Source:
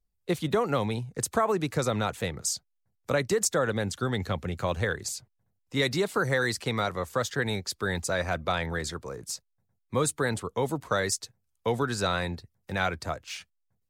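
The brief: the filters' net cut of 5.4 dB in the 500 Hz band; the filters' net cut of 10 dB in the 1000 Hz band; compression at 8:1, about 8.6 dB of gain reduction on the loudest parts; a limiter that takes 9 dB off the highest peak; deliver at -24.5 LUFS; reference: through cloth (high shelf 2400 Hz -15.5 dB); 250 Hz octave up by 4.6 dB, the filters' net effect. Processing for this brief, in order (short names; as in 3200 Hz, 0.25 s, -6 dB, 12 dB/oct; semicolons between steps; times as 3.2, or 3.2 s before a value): bell 250 Hz +8.5 dB; bell 500 Hz -6.5 dB; bell 1000 Hz -9 dB; compressor 8:1, threshold -29 dBFS; limiter -27 dBFS; high shelf 2400 Hz -15.5 dB; gain +14 dB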